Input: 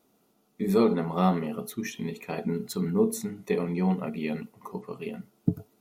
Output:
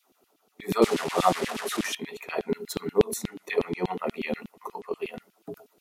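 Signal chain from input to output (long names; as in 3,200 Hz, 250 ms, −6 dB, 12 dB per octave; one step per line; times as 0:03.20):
0:00.82–0:01.95: linear delta modulator 64 kbit/s, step −28.5 dBFS
auto-filter high-pass saw down 8.3 Hz 230–3,400 Hz
level +1.5 dB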